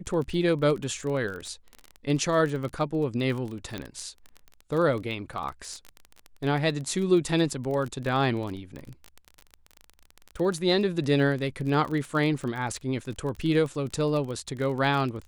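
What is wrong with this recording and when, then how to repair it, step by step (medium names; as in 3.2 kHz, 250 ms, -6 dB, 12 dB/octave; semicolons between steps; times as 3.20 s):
crackle 25 per s -31 dBFS
3.78 s: pop -19 dBFS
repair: de-click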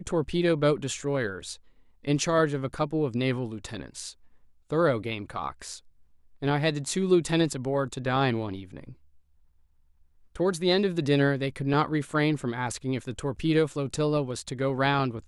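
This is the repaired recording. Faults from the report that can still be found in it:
nothing left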